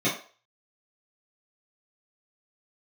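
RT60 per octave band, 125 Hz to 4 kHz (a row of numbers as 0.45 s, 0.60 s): 0.20 s, 0.30 s, 0.40 s, 0.40 s, 0.40 s, 0.35 s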